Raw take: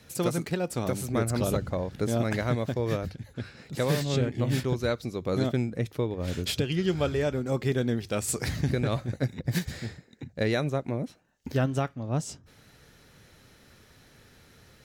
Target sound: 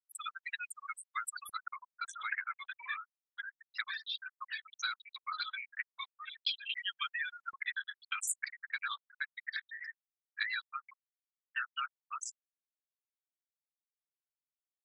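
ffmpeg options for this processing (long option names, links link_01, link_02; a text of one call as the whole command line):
ffmpeg -i in.wav -filter_complex "[0:a]asettb=1/sr,asplit=3[link_01][link_02][link_03];[link_01]atrim=end=5.394[link_04];[link_02]atrim=start=5.39:end=6.47,asetpts=PTS-STARTPTS,afade=type=in:duration=0.004:curve=qsin,afade=type=out:start_time=1.076:duration=0.004:curve=qsin,aeval=exprs='val(0)+0.00398*(sin(2*PI*60*n/s)+sin(2*PI*2*60*n/s)/2+sin(2*PI*3*60*n/s)/3+sin(2*PI*4*60*n/s)/4+sin(2*PI*5*60*n/s)/5)':channel_layout=same[link_05];[link_03]atrim=start=6.466[link_06];[link_04][link_05]acrossfade=duration=0.004:curve1=hsin:curve2=qsin[link_07];[link_07][link_06]acrossfade=duration=0.004:curve1=qsin:curve2=hsin,highpass=frequency=1300:width=0.5412,highpass=frequency=1300:width=1.3066,bandreject=frequency=7500:width=23,dynaudnorm=framelen=940:gausssize=3:maxgain=5dB,asettb=1/sr,asplit=3[link_08][link_09][link_10];[link_08]atrim=end=7.504[link_11];[link_09]atrim=start=7.5:end=8.13,asetpts=PTS-STARTPTS,afade=type=in:duration=0.004:curve=qsin,afade=type=out:start_time=0.626:duration=0.004:curve=qsin,acrusher=bits=5:mix=0:aa=0.5[link_12];[link_10]atrim=start=8.126[link_13];[link_11][link_12]acrossfade=duration=0.004:curve1=hsin:curve2=qsin[link_14];[link_14][link_13]acrossfade=duration=0.004:curve1=qsin:curve2=hsin,acompressor=threshold=-39dB:ratio=4,aecho=1:1:168|336:0.106|0.0286,afftfilt=real='re*gte(hypot(re,im),0.0282)':imag='im*gte(hypot(re,im),0.0282)':win_size=1024:overlap=0.75,volume=7.5dB" -ar 48000 -c:a libopus -b:a 16k out.opus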